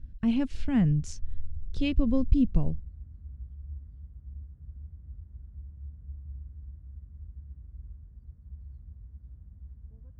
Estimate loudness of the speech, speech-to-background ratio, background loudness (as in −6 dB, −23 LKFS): −27.5 LKFS, 18.5 dB, −46.0 LKFS